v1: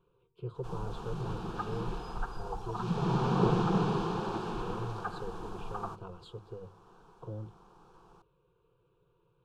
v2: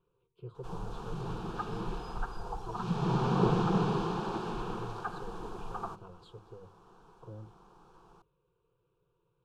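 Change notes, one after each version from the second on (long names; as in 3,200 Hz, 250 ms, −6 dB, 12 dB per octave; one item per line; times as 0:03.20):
speech −5.5 dB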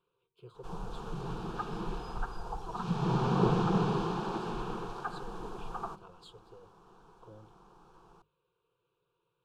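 speech: add spectral tilt +3 dB per octave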